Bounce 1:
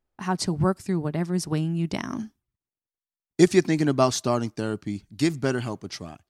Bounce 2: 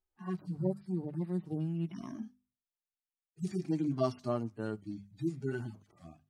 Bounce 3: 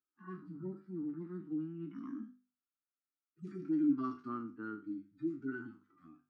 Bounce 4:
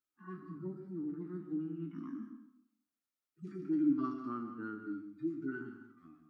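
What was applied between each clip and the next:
harmonic-percussive split with one part muted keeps harmonic; mains-hum notches 50/100/150/200/250 Hz; level −8.5 dB
peak hold with a decay on every bin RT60 0.33 s; pair of resonant band-passes 620 Hz, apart 2.2 octaves; level +5.5 dB
convolution reverb RT60 0.75 s, pre-delay 118 ms, DRR 7.5 dB

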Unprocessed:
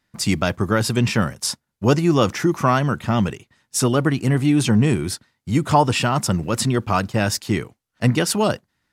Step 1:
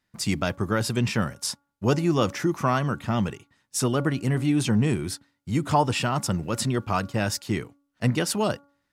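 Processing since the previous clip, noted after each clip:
hum removal 283.2 Hz, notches 5
level −5.5 dB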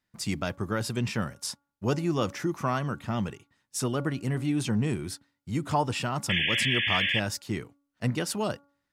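sound drawn into the spectrogram noise, 0:06.29–0:07.20, 1,600–3,500 Hz −22 dBFS
level −5 dB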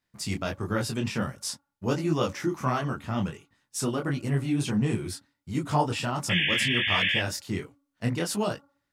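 micro pitch shift up and down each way 49 cents
level +4.5 dB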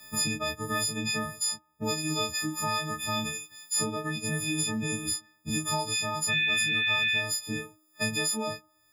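every partial snapped to a pitch grid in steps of 6 semitones
multiband upward and downward compressor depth 100%
level −8 dB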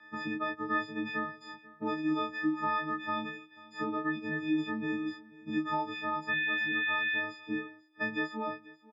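loudspeaker in its box 290–2,600 Hz, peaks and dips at 320 Hz +8 dB, 470 Hz −6 dB, 690 Hz −7 dB, 1,000 Hz +3 dB, 1,600 Hz +4 dB, 2,500 Hz −8 dB
single-tap delay 489 ms −20.5 dB

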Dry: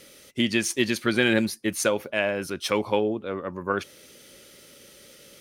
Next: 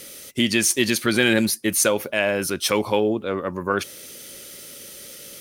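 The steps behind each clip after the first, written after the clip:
high-shelf EQ 6,600 Hz +11 dB
in parallel at −1 dB: brickwall limiter −19 dBFS, peak gain reduction 11.5 dB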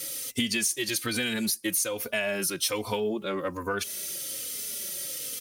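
high-shelf EQ 3,100 Hz +10 dB
downward compressor 6 to 1, threshold −22 dBFS, peak gain reduction 14 dB
barber-pole flanger 3.2 ms −1.2 Hz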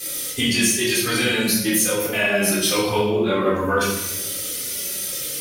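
rectangular room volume 460 cubic metres, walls mixed, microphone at 3.8 metres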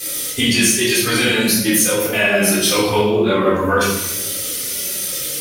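flanger 1.8 Hz, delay 7.7 ms, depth 8.6 ms, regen −68%
level +8.5 dB

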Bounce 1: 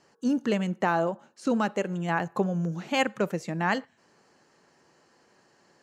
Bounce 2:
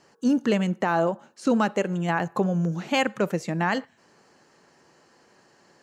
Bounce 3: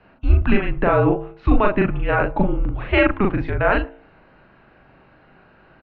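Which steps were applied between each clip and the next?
brickwall limiter −15.5 dBFS, peak gain reduction 5 dB; level +4 dB
double-tracking delay 39 ms −2 dB; hum removal 60.44 Hz, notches 20; single-sideband voice off tune −210 Hz 170–3,200 Hz; level +6 dB

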